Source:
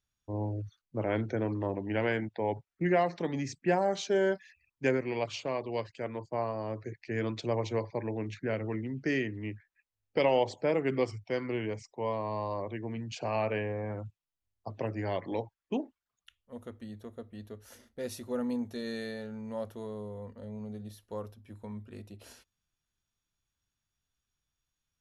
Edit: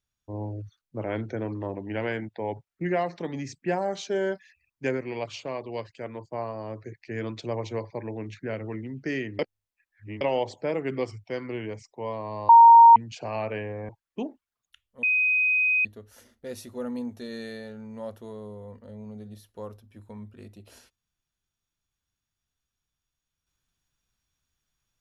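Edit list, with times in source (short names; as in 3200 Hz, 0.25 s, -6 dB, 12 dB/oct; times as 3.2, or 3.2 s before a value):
9.39–10.21 reverse
12.49–12.96 bleep 928 Hz -8 dBFS
13.89–15.43 cut
16.57–17.39 bleep 2510 Hz -19.5 dBFS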